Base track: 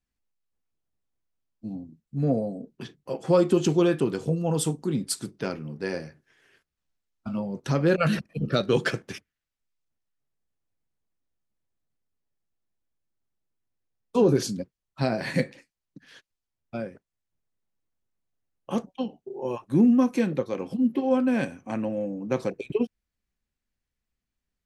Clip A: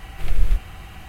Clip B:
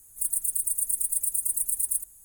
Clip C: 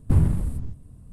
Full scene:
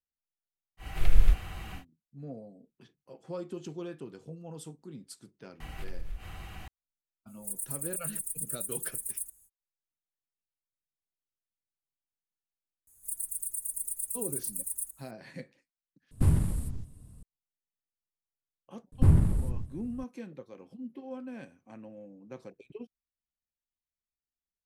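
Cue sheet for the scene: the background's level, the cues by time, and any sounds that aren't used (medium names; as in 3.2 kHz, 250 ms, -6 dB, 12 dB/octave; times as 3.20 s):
base track -18.5 dB
0.77 s: add A -2.5 dB, fades 0.10 s
5.60 s: add A -5 dB + compression 4:1, threshold -29 dBFS
7.26 s: add B -9.5 dB, fades 0.05 s
12.87 s: add B -8.5 dB
16.11 s: replace with C -5.5 dB + treble shelf 2.6 kHz +10.5 dB
18.92 s: add C -2 dB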